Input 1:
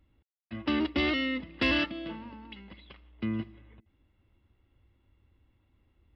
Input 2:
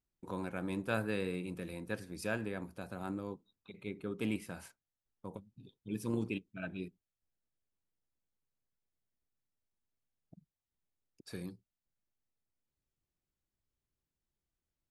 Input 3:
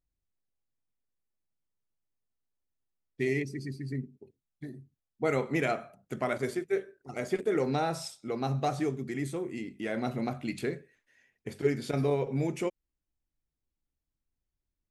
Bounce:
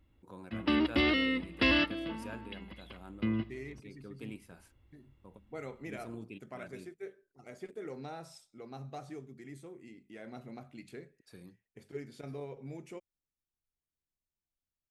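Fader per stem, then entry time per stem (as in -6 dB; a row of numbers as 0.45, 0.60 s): 0.0, -9.5, -14.5 dB; 0.00, 0.00, 0.30 s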